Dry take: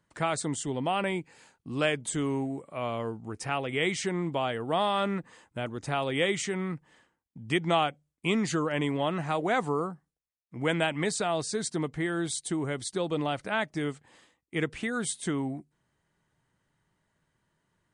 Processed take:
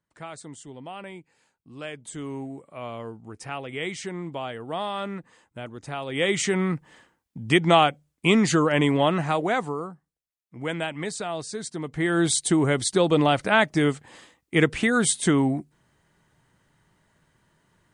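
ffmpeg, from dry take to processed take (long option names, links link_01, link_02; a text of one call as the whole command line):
ffmpeg -i in.wav -af "volume=20dB,afade=type=in:start_time=1.83:duration=0.64:silence=0.446684,afade=type=in:start_time=6.07:duration=0.42:silence=0.281838,afade=type=out:start_time=9.03:duration=0.73:silence=0.316228,afade=type=in:start_time=11.83:duration=0.43:silence=0.251189" out.wav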